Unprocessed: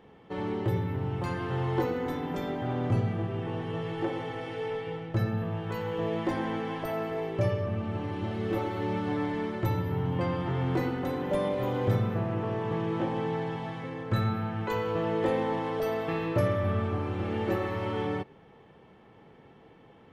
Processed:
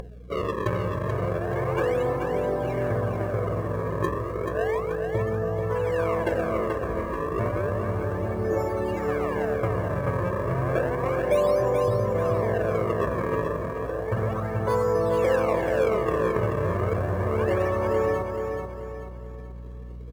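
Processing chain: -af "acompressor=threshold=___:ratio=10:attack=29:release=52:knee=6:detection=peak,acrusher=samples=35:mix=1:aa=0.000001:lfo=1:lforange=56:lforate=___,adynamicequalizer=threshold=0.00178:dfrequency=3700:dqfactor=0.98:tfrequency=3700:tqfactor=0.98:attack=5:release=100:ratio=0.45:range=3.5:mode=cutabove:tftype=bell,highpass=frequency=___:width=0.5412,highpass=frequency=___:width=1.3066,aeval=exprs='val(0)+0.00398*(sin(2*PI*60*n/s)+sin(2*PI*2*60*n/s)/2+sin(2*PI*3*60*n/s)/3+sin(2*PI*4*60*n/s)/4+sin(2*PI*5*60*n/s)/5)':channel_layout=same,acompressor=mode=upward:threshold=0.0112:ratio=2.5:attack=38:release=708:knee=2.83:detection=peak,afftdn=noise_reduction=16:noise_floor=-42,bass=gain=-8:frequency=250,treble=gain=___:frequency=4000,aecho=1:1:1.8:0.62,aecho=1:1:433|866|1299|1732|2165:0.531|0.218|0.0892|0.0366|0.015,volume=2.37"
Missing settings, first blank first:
0.0355, 0.32, 56, 56, -5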